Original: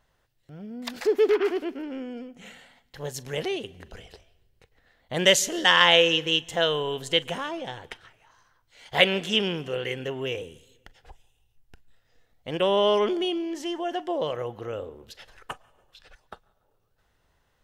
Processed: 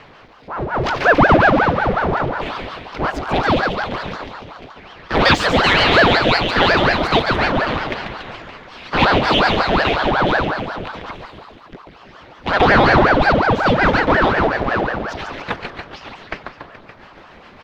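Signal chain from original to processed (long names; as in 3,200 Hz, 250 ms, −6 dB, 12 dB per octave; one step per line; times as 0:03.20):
pitch shifter swept by a sawtooth +3.5 semitones, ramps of 161 ms
high-pass filter 150 Hz 6 dB per octave
leveller curve on the samples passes 2
rotating-speaker cabinet horn 0.7 Hz, later 7 Hz, at 0:15.31
single-tap delay 141 ms −12 dB
power curve on the samples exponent 0.5
high-frequency loss of the air 280 metres
on a send: echo with shifted repeats 284 ms, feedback 49%, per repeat −87 Hz, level −9 dB
on the sum: ring modulator whose carrier an LFO sweeps 660 Hz, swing 85%, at 5.5 Hz
level +3.5 dB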